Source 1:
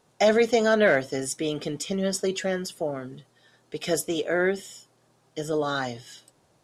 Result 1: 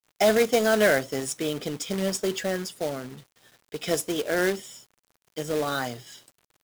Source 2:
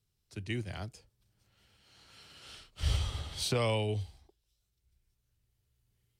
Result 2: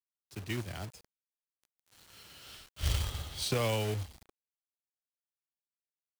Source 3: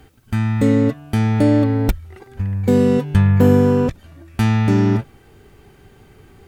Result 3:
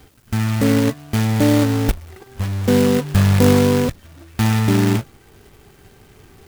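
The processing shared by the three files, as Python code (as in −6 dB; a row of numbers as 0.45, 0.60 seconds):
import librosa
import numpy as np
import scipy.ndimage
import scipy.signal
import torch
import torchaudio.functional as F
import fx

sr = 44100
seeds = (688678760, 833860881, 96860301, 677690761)

y = fx.quant_companded(x, sr, bits=4)
y = F.gain(torch.from_numpy(y), -1.0).numpy()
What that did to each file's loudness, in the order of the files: −0.5, −0.5, −0.5 LU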